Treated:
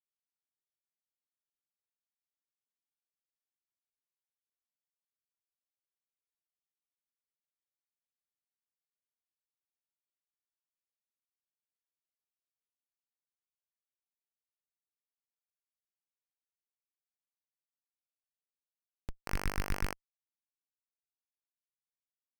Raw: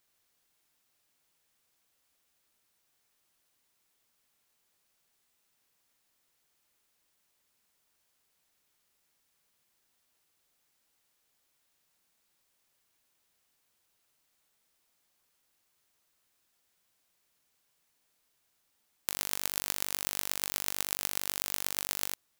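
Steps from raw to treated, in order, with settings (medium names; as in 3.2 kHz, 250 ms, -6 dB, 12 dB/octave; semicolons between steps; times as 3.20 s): 19.27–19.93 s: peaking EQ 2 kHz +10 dB 0.92 oct; Schmitt trigger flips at -33.5 dBFS; trim +15.5 dB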